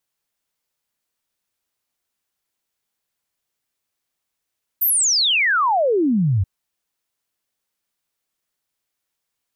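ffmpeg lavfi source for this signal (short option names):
-f lavfi -i "aevalsrc='0.188*clip(min(t,1.63-t)/0.01,0,1)*sin(2*PI*15000*1.63/log(88/15000)*(exp(log(88/15000)*t/1.63)-1))':d=1.63:s=44100"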